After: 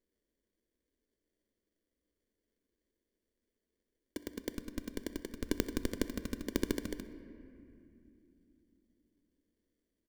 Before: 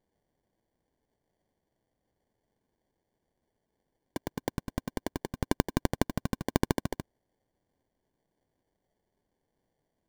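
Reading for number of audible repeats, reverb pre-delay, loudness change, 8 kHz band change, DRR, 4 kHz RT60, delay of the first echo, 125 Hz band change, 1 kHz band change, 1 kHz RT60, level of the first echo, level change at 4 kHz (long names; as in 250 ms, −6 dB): 1, 3 ms, −6.0 dB, −3.5 dB, 10.5 dB, 1.7 s, 64 ms, −11.5 dB, −16.0 dB, 2.4 s, −21.5 dB, −4.0 dB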